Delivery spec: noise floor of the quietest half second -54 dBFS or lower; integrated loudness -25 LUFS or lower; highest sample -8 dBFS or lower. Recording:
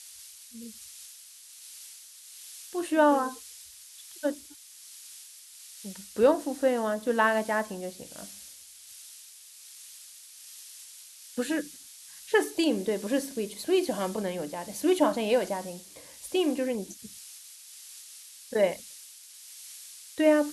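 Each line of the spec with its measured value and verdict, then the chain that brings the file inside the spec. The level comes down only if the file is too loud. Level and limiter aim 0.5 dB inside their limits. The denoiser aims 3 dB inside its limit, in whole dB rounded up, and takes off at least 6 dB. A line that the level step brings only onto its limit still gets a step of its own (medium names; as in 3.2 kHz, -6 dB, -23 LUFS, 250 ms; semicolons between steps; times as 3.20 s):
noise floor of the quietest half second -50 dBFS: fail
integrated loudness -28.0 LUFS: pass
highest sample -10.0 dBFS: pass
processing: noise reduction 7 dB, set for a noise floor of -50 dBFS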